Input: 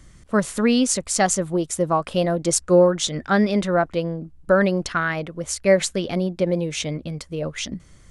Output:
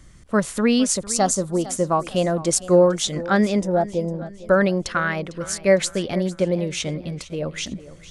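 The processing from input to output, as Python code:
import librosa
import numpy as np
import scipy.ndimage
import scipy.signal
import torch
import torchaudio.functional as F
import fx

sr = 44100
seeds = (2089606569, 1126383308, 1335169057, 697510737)

y = fx.band_shelf(x, sr, hz=2200.0, db=-9.5, octaves=1.2, at=(0.96, 1.59))
y = fx.spec_box(y, sr, start_s=3.59, length_s=0.55, low_hz=1000.0, high_hz=4800.0, gain_db=-18)
y = fx.echo_warbled(y, sr, ms=454, feedback_pct=43, rate_hz=2.8, cents=71, wet_db=-17)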